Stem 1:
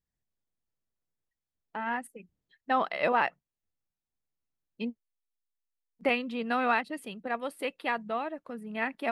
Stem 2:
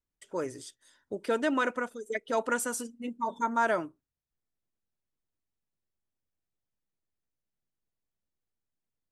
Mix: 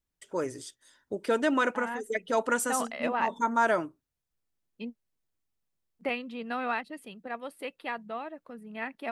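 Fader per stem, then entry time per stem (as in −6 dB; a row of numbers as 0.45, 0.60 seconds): −4.5, +2.0 decibels; 0.00, 0.00 seconds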